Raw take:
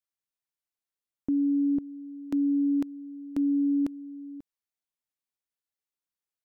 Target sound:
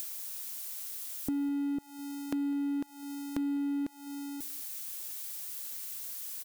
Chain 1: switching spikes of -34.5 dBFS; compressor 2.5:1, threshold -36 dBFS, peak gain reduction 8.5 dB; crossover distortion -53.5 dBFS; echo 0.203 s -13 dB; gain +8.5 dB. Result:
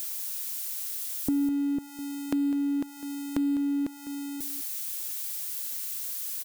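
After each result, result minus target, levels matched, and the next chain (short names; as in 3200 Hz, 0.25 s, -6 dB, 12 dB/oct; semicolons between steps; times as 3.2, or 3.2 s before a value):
echo-to-direct +10.5 dB; compressor: peak gain reduction -5.5 dB
switching spikes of -34.5 dBFS; compressor 2.5:1, threshold -36 dBFS, peak gain reduction 8.5 dB; crossover distortion -53.5 dBFS; echo 0.203 s -23.5 dB; gain +8.5 dB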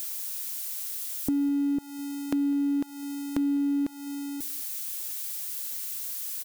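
compressor: peak gain reduction -5.5 dB
switching spikes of -34.5 dBFS; compressor 2.5:1, threshold -45 dBFS, peak gain reduction 13.5 dB; crossover distortion -53.5 dBFS; echo 0.203 s -23.5 dB; gain +8.5 dB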